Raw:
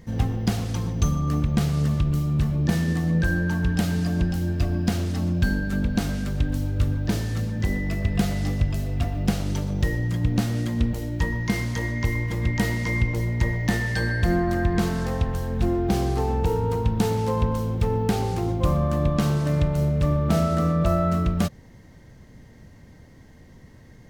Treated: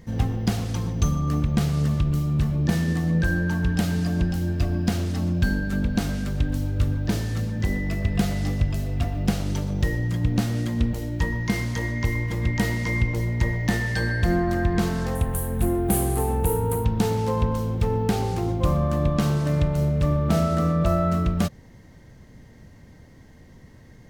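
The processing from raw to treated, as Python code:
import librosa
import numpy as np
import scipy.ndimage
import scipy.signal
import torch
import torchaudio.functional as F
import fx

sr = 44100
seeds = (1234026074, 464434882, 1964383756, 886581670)

y = fx.high_shelf_res(x, sr, hz=7500.0, db=13.5, q=3.0, at=(15.15, 16.85))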